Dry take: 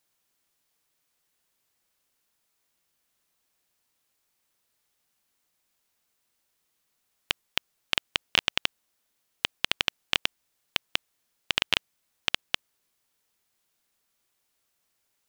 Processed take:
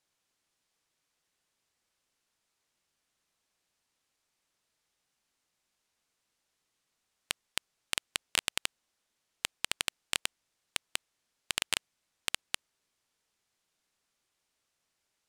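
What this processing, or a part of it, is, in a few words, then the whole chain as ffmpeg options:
overflowing digital effects unit: -af "aeval=exprs='(mod(1.88*val(0)+1,2)-1)/1.88':c=same,lowpass=9000,volume=0.794"

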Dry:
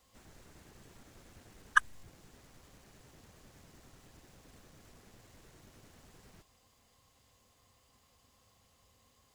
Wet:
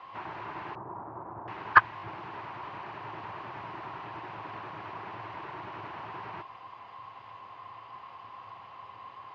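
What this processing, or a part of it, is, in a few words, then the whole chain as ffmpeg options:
overdrive pedal into a guitar cabinet: -filter_complex "[0:a]asplit=2[s0][s1];[s1]highpass=f=720:p=1,volume=25.1,asoftclip=type=tanh:threshold=0.422[s2];[s0][s2]amix=inputs=2:normalize=0,lowpass=f=1100:p=1,volume=0.501,highpass=110,equalizer=f=110:t=q:w=4:g=10,equalizer=f=330:t=q:w=4:g=6,equalizer=f=500:t=q:w=4:g=-9,equalizer=f=970:t=q:w=4:g=6,equalizer=f=2600:t=q:w=4:g=3,equalizer=f=3600:t=q:w=4:g=-4,lowpass=f=3700:w=0.5412,lowpass=f=3700:w=1.3066,asettb=1/sr,asplit=3[s3][s4][s5];[s3]atrim=end=0.754[s6];[s4]atrim=start=0.75:end=1.48,asetpts=PTS-STARTPTS,afade=t=in:d=0.004:c=qsin,afade=t=out:st=0.726:d=0.004:c=qsin,lowpass=f=1100:w=0.5412,lowpass=f=1100:w=1.3066[s7];[s5]atrim=start=1.476[s8];[s6][s7]acrossfade=d=0.004:c1=hsin:c2=qsin[s9];[s9][s8]acrossfade=d=0.004:c1=qsin:c2=hsin,equalizer=f=250:t=o:w=0.67:g=-10,equalizer=f=1000:t=o:w=0.67:g=6,equalizer=f=10000:t=o:w=0.67:g=-7,volume=1.41"

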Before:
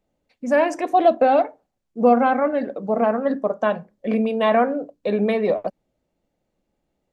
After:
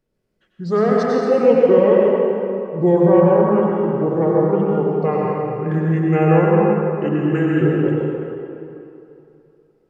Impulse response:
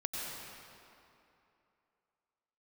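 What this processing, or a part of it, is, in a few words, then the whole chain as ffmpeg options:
slowed and reverbed: -filter_complex "[0:a]asetrate=31752,aresample=44100[s0];[1:a]atrim=start_sample=2205[s1];[s0][s1]afir=irnorm=-1:irlink=0,volume=1.12"

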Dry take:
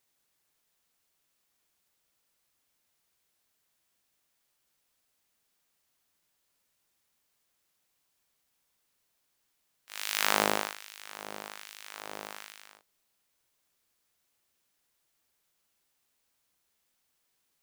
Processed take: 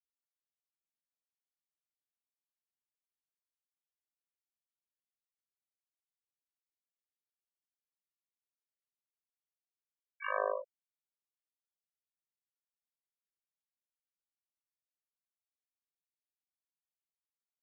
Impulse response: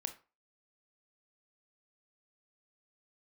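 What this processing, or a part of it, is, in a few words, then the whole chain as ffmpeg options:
microphone above a desk: -filter_complex "[0:a]aecho=1:1:1.8:0.69[s0];[1:a]atrim=start_sample=2205[s1];[s0][s1]afir=irnorm=-1:irlink=0,afftfilt=real='re*gte(hypot(re,im),0.112)':imag='im*gte(hypot(re,im),0.112)':win_size=1024:overlap=0.75,volume=0.631"

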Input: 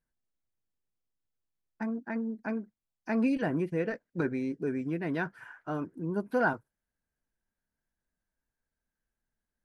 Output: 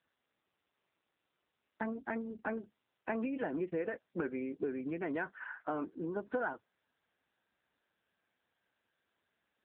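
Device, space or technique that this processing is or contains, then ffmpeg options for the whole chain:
voicemail: -filter_complex "[0:a]asplit=3[s0][s1][s2];[s0]afade=t=out:st=1.88:d=0.02[s3];[s1]lowpass=f=5000:w=0.5412,lowpass=f=5000:w=1.3066,afade=t=in:st=1.88:d=0.02,afade=t=out:st=2.46:d=0.02[s4];[s2]afade=t=in:st=2.46:d=0.02[s5];[s3][s4][s5]amix=inputs=3:normalize=0,highpass=320,lowpass=2800,acompressor=threshold=0.0126:ratio=6,volume=1.88" -ar 8000 -c:a libopencore_amrnb -b:a 7950

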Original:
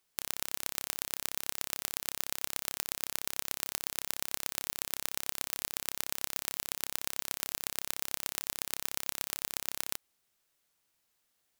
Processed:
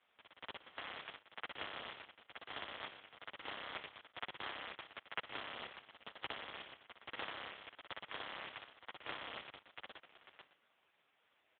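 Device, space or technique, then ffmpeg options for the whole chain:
satellite phone: -af "highpass=320,lowpass=3400,aecho=1:1:585:0.0631,volume=5.62" -ar 8000 -c:a libopencore_amrnb -b:a 4750

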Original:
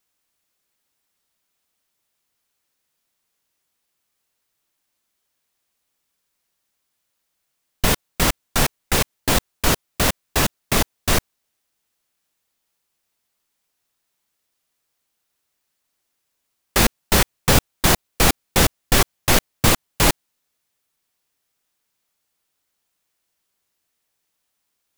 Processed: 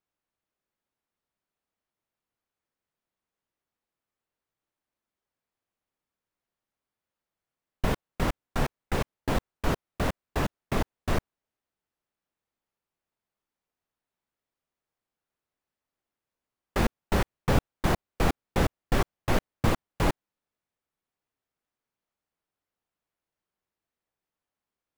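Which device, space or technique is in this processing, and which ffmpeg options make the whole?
through cloth: -af "highshelf=f=2800:g=-17.5,volume=0.501"

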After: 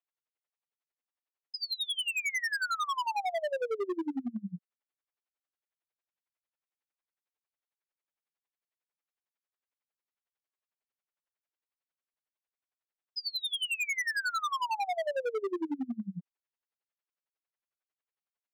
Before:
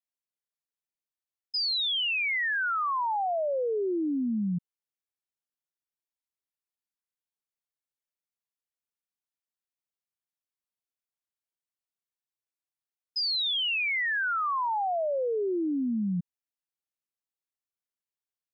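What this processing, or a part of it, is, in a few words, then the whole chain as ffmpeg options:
helicopter radio: -af "highpass=400,lowpass=2600,aeval=exprs='val(0)*pow(10,-28*(0.5-0.5*cos(2*PI*11*n/s))/20)':c=same,asoftclip=type=hard:threshold=0.0141,volume=2.66"

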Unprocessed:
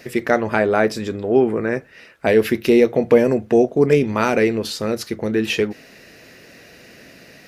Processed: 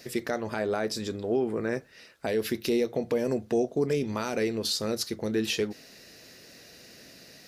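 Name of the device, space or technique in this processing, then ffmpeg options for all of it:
over-bright horn tweeter: -af "highshelf=f=3200:t=q:w=1.5:g=6.5,alimiter=limit=0.376:level=0:latency=1:release=209,volume=0.398"

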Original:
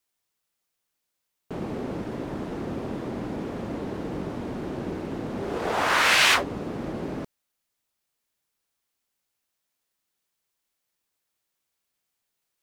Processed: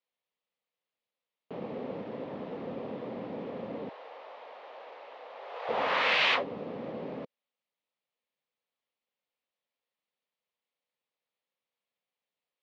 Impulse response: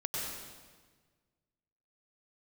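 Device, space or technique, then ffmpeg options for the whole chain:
kitchen radio: -filter_complex "[0:a]highpass=190,equalizer=f=340:t=q:w=4:g=-8,equalizer=f=510:t=q:w=4:g=7,equalizer=f=1500:t=q:w=4:g=-7,lowpass=f=3800:w=0.5412,lowpass=f=3800:w=1.3066,asettb=1/sr,asplit=3[s0][s1][s2];[s0]atrim=end=3.894[s3];[s1]atrim=start=3.89:end=5.69,asetpts=PTS-STARTPTS,afade=t=in:d=0.004:c=qsin,afade=t=out:st=1.796:d=0.004:c=qsin,highpass=f=660:w=0.5412,highpass=f=660:w=1.3066[s4];[s2]atrim=start=5.686[s5];[s3][s4]acrossfade=d=0.004:c1=hsin:c2=qsin[s6];[s6][s5]acrossfade=d=0.004:c1=qsin:c2=hsin,volume=0.562"

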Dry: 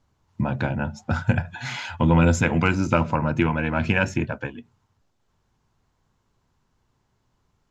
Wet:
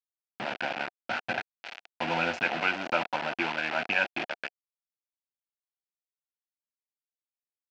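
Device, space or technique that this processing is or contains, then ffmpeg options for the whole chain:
hand-held game console: -af "acrusher=bits=3:mix=0:aa=0.000001,highpass=430,equalizer=f=460:t=q:w=4:g=-6,equalizer=f=730:t=q:w=4:g=7,equalizer=f=1100:t=q:w=4:g=-7,equalizer=f=1500:t=q:w=4:g=4,equalizer=f=2600:t=q:w=4:g=6,equalizer=f=3800:t=q:w=4:g=-4,lowpass=f=4200:w=0.5412,lowpass=f=4200:w=1.3066,volume=0.501"

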